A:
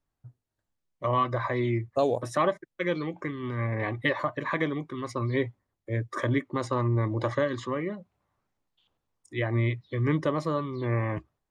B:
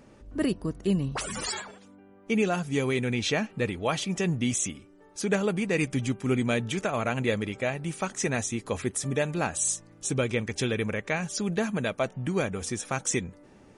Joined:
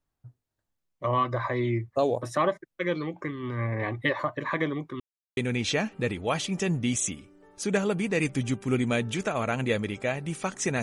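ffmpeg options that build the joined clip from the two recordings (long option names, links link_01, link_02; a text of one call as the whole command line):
ffmpeg -i cue0.wav -i cue1.wav -filter_complex "[0:a]apad=whole_dur=10.82,atrim=end=10.82,asplit=2[link_01][link_02];[link_01]atrim=end=5,asetpts=PTS-STARTPTS,afade=type=out:start_time=4.996:duration=0.004:curve=hsin[link_03];[link_02]atrim=start=5:end=5.37,asetpts=PTS-STARTPTS,volume=0[link_04];[1:a]atrim=start=2.95:end=8.4,asetpts=PTS-STARTPTS,afade=type=in:duration=0.004:curve=hsin[link_05];[link_03][link_04][link_05]concat=n=3:v=0:a=1" out.wav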